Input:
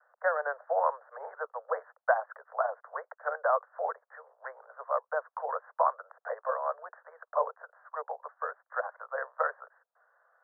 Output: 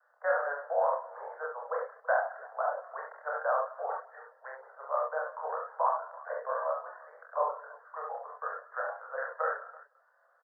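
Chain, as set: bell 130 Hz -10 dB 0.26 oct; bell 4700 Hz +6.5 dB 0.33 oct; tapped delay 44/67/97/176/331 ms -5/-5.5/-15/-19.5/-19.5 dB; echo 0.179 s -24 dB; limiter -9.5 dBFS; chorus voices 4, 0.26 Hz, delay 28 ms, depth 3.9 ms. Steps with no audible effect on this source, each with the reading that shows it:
bell 130 Hz: input band starts at 400 Hz; bell 4700 Hz: input band ends at 1900 Hz; limiter -9.5 dBFS: input peak -11.5 dBFS

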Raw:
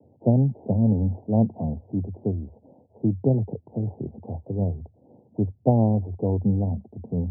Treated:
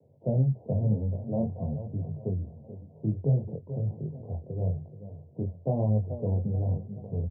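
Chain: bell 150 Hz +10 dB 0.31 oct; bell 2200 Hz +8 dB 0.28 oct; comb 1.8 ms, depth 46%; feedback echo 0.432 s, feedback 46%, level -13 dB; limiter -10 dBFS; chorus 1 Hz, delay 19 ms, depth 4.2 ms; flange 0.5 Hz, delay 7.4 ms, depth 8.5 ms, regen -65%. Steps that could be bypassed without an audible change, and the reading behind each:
bell 2200 Hz: input band ends at 760 Hz

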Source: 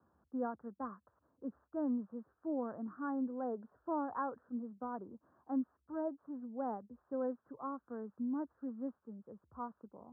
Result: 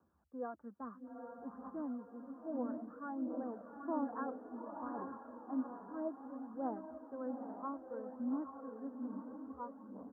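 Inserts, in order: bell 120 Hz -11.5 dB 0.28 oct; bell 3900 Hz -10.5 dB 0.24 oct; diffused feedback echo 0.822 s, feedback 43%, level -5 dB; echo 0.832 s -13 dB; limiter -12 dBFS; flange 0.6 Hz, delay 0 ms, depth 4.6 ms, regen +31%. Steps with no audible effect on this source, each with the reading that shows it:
bell 3900 Hz: input band ends at 1500 Hz; limiter -12 dBFS: input peak -24.5 dBFS

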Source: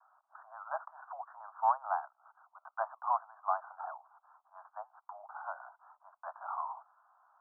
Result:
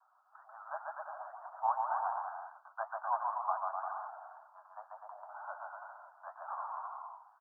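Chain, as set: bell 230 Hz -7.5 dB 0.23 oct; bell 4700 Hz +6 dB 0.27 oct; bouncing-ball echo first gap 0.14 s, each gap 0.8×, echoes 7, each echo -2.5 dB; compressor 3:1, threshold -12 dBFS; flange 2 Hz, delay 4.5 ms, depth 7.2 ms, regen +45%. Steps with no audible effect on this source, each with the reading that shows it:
bell 230 Hz: input band starts at 540 Hz; bell 4700 Hz: input band ends at 1700 Hz; compressor, threshold -12 dBFS: input peak -16.5 dBFS

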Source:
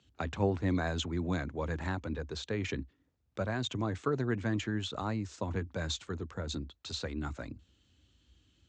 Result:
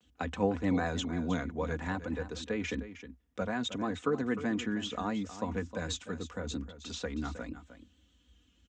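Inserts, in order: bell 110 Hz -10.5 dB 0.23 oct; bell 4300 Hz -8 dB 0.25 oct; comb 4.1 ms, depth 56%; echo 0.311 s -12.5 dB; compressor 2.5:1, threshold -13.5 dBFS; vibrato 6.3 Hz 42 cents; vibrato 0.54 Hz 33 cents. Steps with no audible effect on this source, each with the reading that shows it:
compressor, threshold -13.5 dBFS: input peak -17.0 dBFS

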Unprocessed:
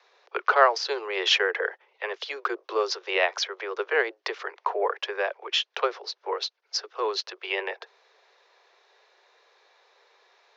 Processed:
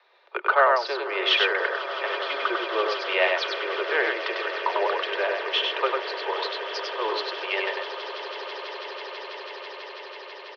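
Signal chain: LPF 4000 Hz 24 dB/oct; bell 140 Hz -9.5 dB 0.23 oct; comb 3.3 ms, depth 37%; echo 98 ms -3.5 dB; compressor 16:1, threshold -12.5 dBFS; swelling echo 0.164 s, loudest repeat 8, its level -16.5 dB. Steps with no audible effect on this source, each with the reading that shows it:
bell 140 Hz: input band starts at 300 Hz

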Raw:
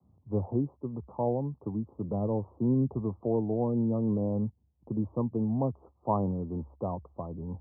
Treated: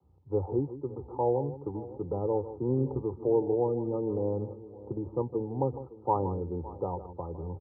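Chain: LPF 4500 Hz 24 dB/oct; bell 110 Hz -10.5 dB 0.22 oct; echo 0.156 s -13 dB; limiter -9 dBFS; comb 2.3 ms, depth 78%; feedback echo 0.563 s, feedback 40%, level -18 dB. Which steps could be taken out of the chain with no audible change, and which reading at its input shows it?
LPF 4500 Hz: input band ends at 1100 Hz; limiter -9 dBFS: input peak -14.0 dBFS

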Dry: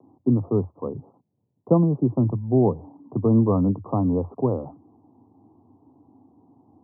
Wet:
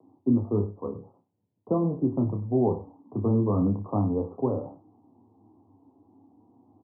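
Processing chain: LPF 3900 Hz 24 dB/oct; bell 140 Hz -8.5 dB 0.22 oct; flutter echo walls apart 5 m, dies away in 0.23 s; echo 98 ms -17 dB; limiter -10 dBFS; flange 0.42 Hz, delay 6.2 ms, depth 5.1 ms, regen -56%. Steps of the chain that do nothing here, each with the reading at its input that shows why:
LPF 3900 Hz: input band ends at 1200 Hz

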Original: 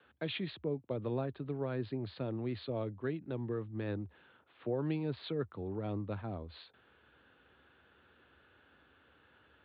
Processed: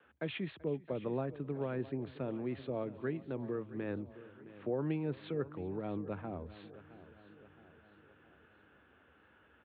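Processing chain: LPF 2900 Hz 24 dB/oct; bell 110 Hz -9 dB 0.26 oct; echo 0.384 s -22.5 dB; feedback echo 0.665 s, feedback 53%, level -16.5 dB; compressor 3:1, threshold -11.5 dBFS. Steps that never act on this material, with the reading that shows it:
compressor, threshold -11.5 dBFS: input peak -24.0 dBFS

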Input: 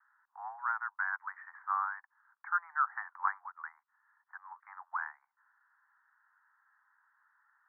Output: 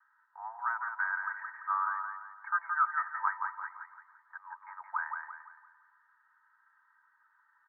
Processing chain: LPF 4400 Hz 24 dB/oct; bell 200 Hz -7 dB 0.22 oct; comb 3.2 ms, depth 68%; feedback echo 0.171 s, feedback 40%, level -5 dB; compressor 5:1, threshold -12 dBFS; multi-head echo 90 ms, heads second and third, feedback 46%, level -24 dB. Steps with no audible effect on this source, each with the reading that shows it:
LPF 4400 Hz: input band ends at 2000 Hz; bell 200 Hz: input band starts at 680 Hz; compressor, threshold -12 dBFS: input peak -16.5 dBFS

